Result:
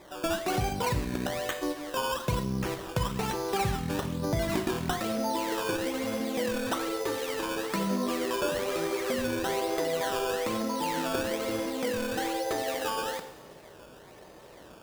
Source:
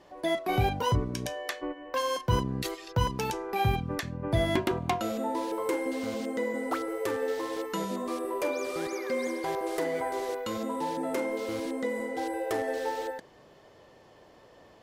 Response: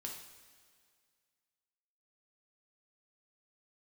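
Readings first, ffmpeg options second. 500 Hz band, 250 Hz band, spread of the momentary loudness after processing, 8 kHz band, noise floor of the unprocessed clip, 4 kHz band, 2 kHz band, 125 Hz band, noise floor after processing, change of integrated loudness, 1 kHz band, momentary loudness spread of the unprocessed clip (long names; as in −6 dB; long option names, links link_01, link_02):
0.0 dB, +1.5 dB, 4 LU, +5.5 dB, −56 dBFS, +3.5 dB, +1.5 dB, −2.0 dB, −51 dBFS, +0.5 dB, 0.0 dB, 6 LU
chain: -filter_complex "[0:a]acompressor=threshold=-32dB:ratio=4,acrusher=samples=15:mix=1:aa=0.000001:lfo=1:lforange=15:lforate=1.1,asplit=2[link_01][link_02];[1:a]atrim=start_sample=2205[link_03];[link_02][link_03]afir=irnorm=-1:irlink=0,volume=2.5dB[link_04];[link_01][link_04]amix=inputs=2:normalize=0"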